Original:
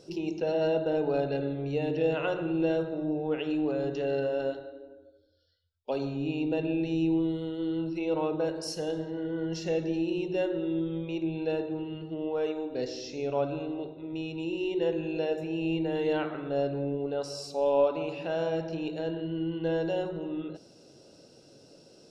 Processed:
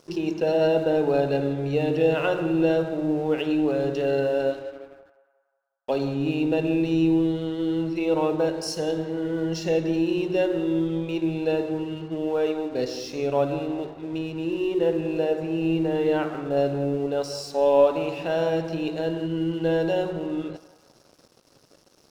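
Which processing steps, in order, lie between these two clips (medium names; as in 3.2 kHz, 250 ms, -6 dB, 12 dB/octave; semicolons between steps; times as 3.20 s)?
14.18–16.57 s: treble shelf 2.7 kHz -9 dB; crossover distortion -54 dBFS; band-passed feedback delay 181 ms, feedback 56%, band-pass 1.1 kHz, level -14 dB; trim +6.5 dB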